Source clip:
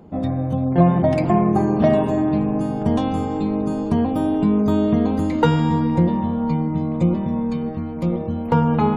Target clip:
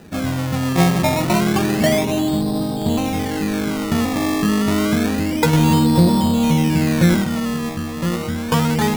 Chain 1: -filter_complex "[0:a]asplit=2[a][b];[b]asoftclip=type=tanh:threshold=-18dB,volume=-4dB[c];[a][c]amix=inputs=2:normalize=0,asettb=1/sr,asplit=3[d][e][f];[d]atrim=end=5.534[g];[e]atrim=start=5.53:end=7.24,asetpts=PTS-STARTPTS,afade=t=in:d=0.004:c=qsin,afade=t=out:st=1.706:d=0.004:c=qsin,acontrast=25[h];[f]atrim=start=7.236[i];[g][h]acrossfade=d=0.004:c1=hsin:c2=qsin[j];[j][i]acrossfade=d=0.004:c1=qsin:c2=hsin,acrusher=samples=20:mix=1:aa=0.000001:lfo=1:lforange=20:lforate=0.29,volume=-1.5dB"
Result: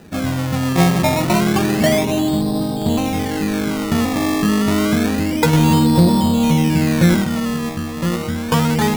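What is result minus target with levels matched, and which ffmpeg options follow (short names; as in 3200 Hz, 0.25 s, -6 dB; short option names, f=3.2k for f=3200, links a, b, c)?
soft clip: distortion -5 dB
-filter_complex "[0:a]asplit=2[a][b];[b]asoftclip=type=tanh:threshold=-26dB,volume=-4dB[c];[a][c]amix=inputs=2:normalize=0,asettb=1/sr,asplit=3[d][e][f];[d]atrim=end=5.534[g];[e]atrim=start=5.53:end=7.24,asetpts=PTS-STARTPTS,afade=t=in:d=0.004:c=qsin,afade=t=out:st=1.706:d=0.004:c=qsin,acontrast=25[h];[f]atrim=start=7.236[i];[g][h]acrossfade=d=0.004:c1=hsin:c2=qsin[j];[j][i]acrossfade=d=0.004:c1=qsin:c2=hsin,acrusher=samples=20:mix=1:aa=0.000001:lfo=1:lforange=20:lforate=0.29,volume=-1.5dB"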